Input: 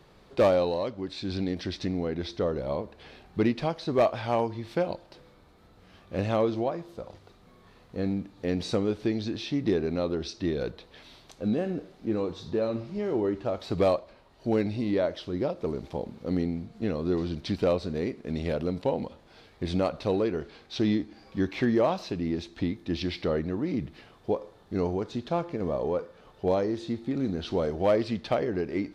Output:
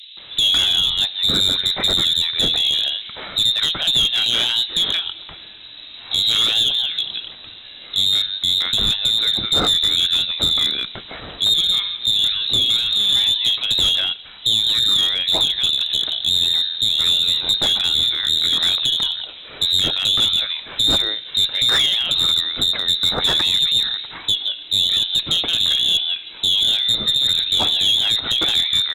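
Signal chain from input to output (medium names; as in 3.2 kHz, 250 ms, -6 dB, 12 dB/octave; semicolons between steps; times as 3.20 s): de-hum 67.41 Hz, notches 5; compression 4:1, threshold -31 dBFS, peak gain reduction 11 dB; frequency inversion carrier 3.9 kHz; bands offset in time highs, lows 170 ms, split 2.9 kHz; one-sided clip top -33 dBFS; loudness maximiser +26 dB; trim -6.5 dB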